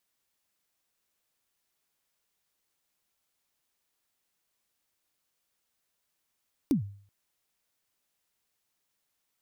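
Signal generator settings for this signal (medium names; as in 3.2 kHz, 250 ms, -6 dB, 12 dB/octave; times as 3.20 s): kick drum length 0.38 s, from 320 Hz, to 100 Hz, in 114 ms, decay 0.50 s, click on, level -18.5 dB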